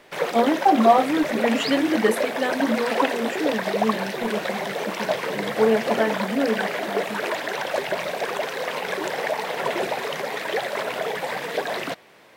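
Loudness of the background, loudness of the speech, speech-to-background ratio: −26.5 LKFS, −23.0 LKFS, 3.5 dB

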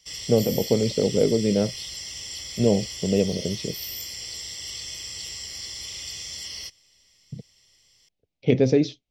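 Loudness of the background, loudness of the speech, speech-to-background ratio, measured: −33.0 LKFS, −23.5 LKFS, 9.5 dB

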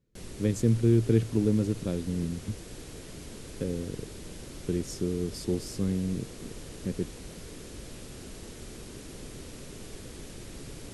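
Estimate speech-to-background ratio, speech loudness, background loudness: 14.5 dB, −29.5 LKFS, −44.0 LKFS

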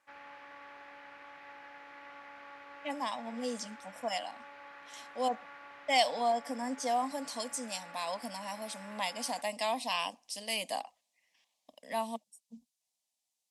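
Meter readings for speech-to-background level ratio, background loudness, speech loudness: 15.0 dB, −50.5 LKFS, −35.5 LKFS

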